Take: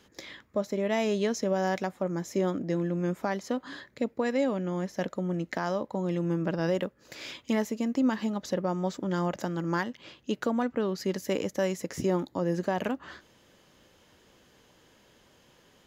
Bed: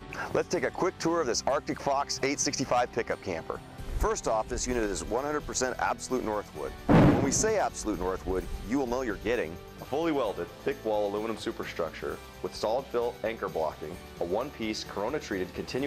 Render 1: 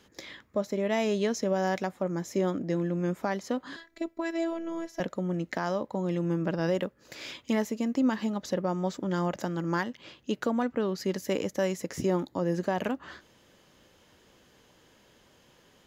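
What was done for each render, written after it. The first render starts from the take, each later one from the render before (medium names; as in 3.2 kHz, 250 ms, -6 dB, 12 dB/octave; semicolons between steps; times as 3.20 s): 3.76–5.00 s: robot voice 332 Hz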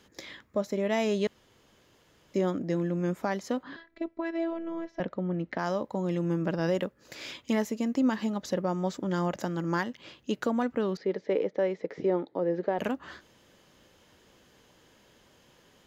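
1.27–2.34 s: room tone; 3.63–5.59 s: distance through air 250 m; 10.97–12.79 s: cabinet simulation 240–3300 Hz, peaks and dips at 240 Hz -5 dB, 450 Hz +8 dB, 1.1 kHz -6 dB, 1.6 kHz -4 dB, 2.8 kHz -9 dB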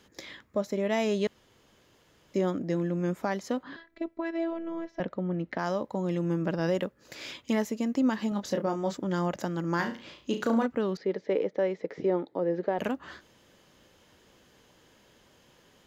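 8.29–8.95 s: doubling 25 ms -6 dB; 9.76–10.66 s: flutter echo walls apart 6 m, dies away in 0.35 s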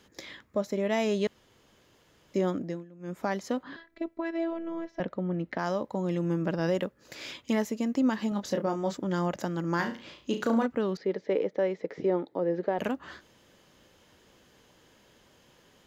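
2.58–3.26 s: dip -21 dB, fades 0.27 s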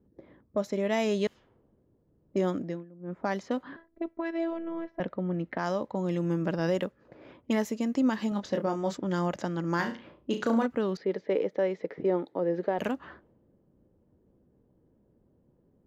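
level-controlled noise filter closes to 310 Hz, open at -26 dBFS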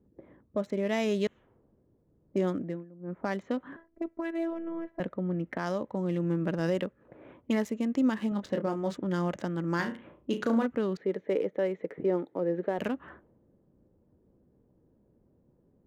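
local Wiener filter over 9 samples; dynamic bell 830 Hz, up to -4 dB, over -44 dBFS, Q 1.4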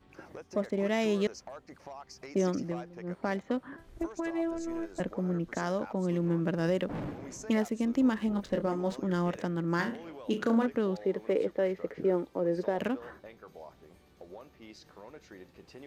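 add bed -18 dB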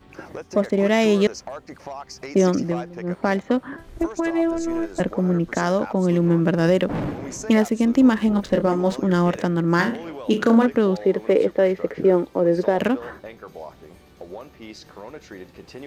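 trim +11 dB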